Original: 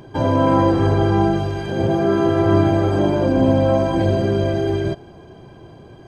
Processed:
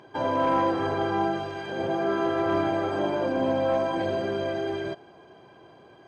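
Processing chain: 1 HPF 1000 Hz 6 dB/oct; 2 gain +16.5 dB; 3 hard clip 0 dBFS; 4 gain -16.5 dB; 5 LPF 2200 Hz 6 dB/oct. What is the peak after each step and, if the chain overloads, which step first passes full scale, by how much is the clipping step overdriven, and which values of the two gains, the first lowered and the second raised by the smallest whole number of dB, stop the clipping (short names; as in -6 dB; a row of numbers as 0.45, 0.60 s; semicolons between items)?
-12.0, +4.5, 0.0, -16.5, -16.5 dBFS; step 2, 4.5 dB; step 2 +11.5 dB, step 4 -11.5 dB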